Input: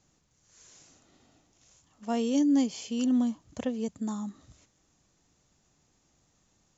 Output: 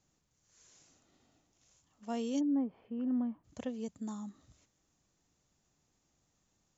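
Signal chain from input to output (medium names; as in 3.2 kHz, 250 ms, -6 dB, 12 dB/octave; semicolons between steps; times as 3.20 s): 2.39–3.43 s: low-pass 1.3 kHz -> 2.2 kHz 24 dB/octave; trim -7.5 dB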